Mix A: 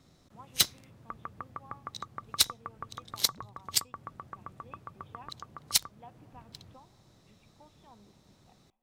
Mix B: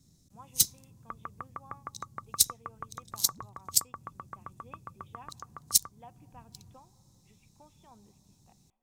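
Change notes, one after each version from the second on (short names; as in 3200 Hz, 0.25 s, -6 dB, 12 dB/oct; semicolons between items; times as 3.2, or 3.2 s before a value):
first sound: add EQ curve 190 Hz 0 dB, 1000 Hz -22 dB, 3100 Hz -12 dB, 6500 Hz +5 dB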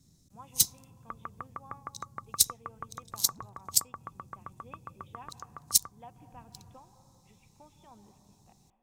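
speech: send +10.5 dB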